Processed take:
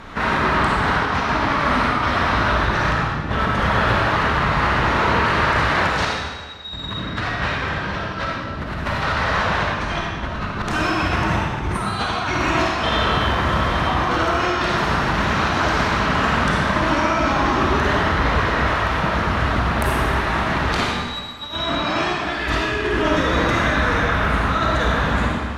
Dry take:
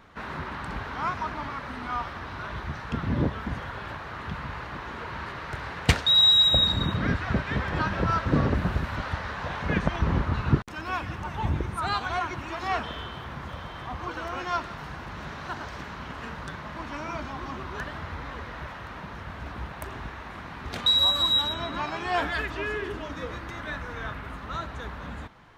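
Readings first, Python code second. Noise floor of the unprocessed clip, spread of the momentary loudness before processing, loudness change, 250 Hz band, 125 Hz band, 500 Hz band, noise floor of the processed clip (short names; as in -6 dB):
-40 dBFS, 17 LU, +7.5 dB, +10.0 dB, +7.5 dB, +12.5 dB, -29 dBFS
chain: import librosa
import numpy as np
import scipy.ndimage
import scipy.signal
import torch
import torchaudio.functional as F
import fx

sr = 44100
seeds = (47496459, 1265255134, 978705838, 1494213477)

y = scipy.signal.sosfilt(scipy.signal.butter(2, 12000.0, 'lowpass', fs=sr, output='sos'), x)
y = fx.dynamic_eq(y, sr, hz=4200.0, q=0.78, threshold_db=-40.0, ratio=4.0, max_db=5)
y = fx.over_compress(y, sr, threshold_db=-36.0, ratio=-1.0)
y = fx.rev_freeverb(y, sr, rt60_s=1.5, hf_ratio=0.95, predelay_ms=10, drr_db=-3.0)
y = y * librosa.db_to_amplitude(8.5)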